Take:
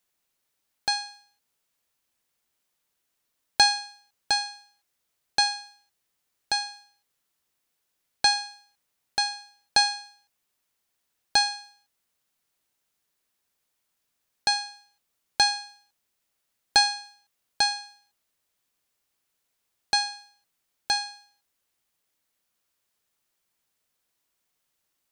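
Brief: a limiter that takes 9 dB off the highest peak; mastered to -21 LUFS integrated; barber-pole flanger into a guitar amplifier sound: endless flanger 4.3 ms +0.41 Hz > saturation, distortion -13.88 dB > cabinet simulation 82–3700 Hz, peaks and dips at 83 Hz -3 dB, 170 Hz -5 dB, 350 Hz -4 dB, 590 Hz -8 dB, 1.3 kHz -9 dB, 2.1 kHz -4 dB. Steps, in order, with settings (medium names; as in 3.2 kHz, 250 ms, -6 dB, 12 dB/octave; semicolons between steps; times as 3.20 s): peak limiter -13.5 dBFS; endless flanger 4.3 ms +0.41 Hz; saturation -24.5 dBFS; cabinet simulation 82–3700 Hz, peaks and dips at 83 Hz -3 dB, 170 Hz -5 dB, 350 Hz -4 dB, 590 Hz -8 dB, 1.3 kHz -9 dB, 2.1 kHz -4 dB; trim +17.5 dB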